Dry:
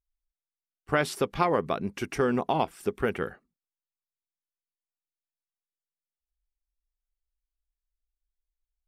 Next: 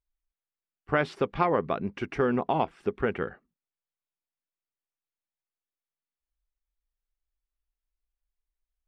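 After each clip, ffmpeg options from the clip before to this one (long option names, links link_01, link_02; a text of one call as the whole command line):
ffmpeg -i in.wav -af "lowpass=2900" out.wav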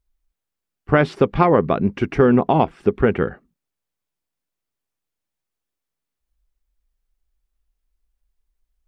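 ffmpeg -i in.wav -af "lowshelf=frequency=460:gain=8,volume=6.5dB" out.wav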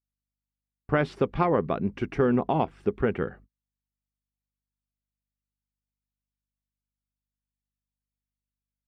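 ffmpeg -i in.wav -af "aeval=exprs='val(0)+0.00501*(sin(2*PI*50*n/s)+sin(2*PI*2*50*n/s)/2+sin(2*PI*3*50*n/s)/3+sin(2*PI*4*50*n/s)/4+sin(2*PI*5*50*n/s)/5)':channel_layout=same,agate=range=-36dB:threshold=-39dB:ratio=16:detection=peak,volume=-8.5dB" out.wav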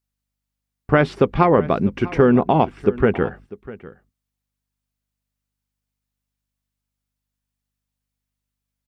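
ffmpeg -i in.wav -af "aecho=1:1:648:0.119,volume=8.5dB" out.wav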